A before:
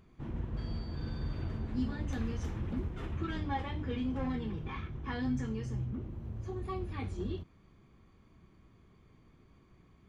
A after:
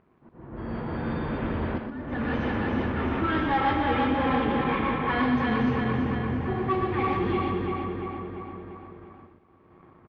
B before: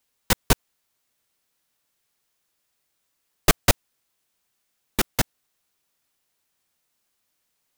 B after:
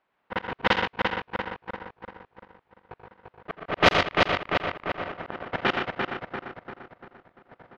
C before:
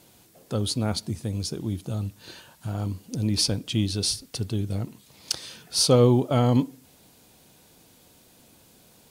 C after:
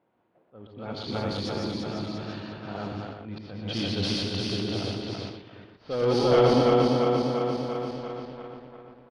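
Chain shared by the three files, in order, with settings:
feedback delay that plays each chunk backwards 172 ms, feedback 80%, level −3 dB
high-pass filter 560 Hz 6 dB per octave
dynamic equaliser 3,000 Hz, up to +3 dB, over −43 dBFS, Q 3.9
leveller curve on the samples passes 2
volume swells 554 ms
background noise blue −65 dBFS
high-frequency loss of the air 290 metres
multi-tap delay 85/122/144 ms −12/−5.5/−15.5 dB
low-pass that shuts in the quiet parts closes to 1,300 Hz, open at −23.5 dBFS
loudness normalisation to −27 LKFS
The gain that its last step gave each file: +9.5, +12.5, −3.0 decibels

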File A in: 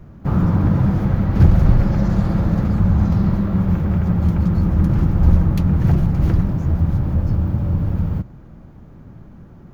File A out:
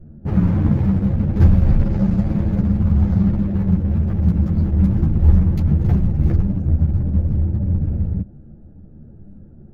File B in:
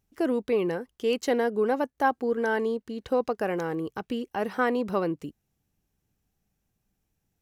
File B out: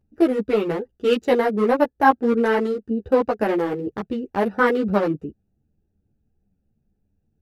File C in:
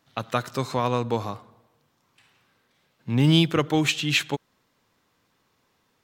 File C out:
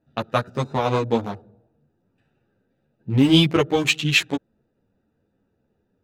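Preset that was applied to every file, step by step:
adaptive Wiener filter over 41 samples
string-ensemble chorus
normalise the peak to −2 dBFS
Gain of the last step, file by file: +2.5, +11.5, +8.0 decibels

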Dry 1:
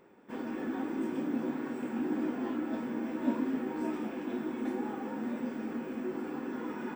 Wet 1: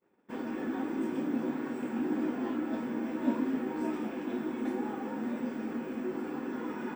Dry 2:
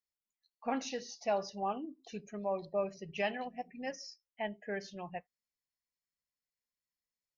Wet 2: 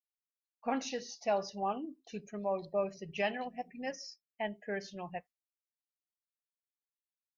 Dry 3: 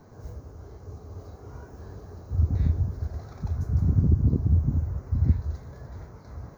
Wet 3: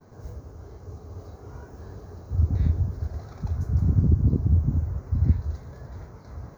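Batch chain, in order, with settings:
downward expander −50 dBFS
level +1 dB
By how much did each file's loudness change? +1.0, +1.0, +1.0 LU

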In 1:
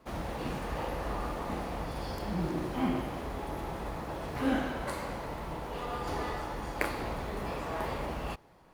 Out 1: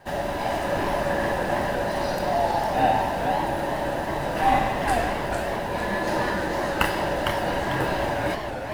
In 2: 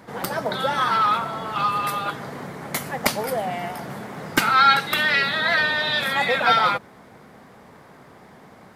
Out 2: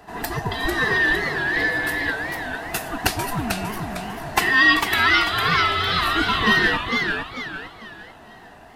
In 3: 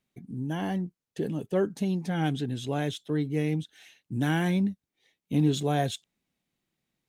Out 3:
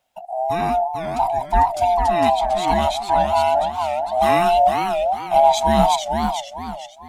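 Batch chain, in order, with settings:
neighbouring bands swapped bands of 500 Hz
feedback echo with a swinging delay time 450 ms, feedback 36%, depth 192 cents, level −5 dB
normalise the peak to −3 dBFS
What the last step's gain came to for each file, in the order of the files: +9.0, 0.0, +9.5 decibels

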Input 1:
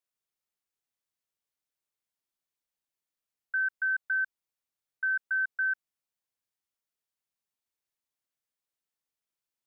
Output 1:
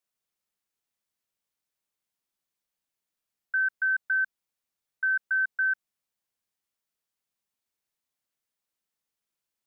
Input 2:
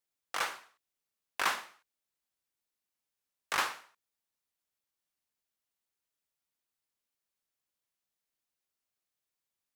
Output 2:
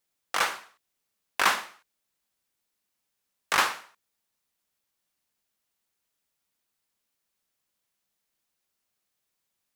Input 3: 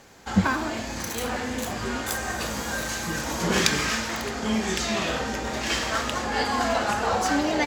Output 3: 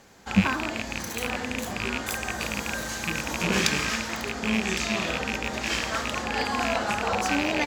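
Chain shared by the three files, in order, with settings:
loose part that buzzes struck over −31 dBFS, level −12 dBFS
parametric band 200 Hz +4.5 dB 0.22 octaves
loudness normalisation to −27 LKFS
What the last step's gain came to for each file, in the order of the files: +3.0, +7.5, −3.0 decibels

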